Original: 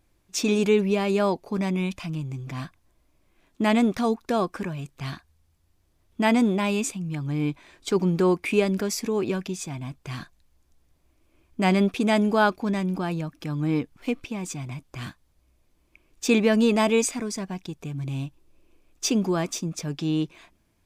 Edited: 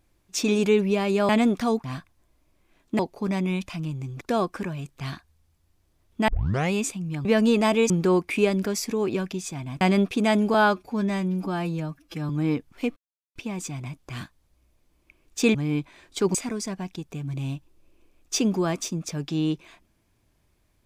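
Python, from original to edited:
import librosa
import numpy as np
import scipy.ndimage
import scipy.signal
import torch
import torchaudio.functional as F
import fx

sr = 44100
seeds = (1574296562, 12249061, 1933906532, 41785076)

y = fx.edit(x, sr, fx.swap(start_s=1.29, length_s=1.22, other_s=3.66, other_length_s=0.55),
    fx.tape_start(start_s=6.28, length_s=0.45),
    fx.swap(start_s=7.25, length_s=0.8, other_s=16.4, other_length_s=0.65),
    fx.cut(start_s=9.96, length_s=1.68),
    fx.stretch_span(start_s=12.37, length_s=1.17, factor=1.5),
    fx.insert_silence(at_s=14.21, length_s=0.39), tone=tone)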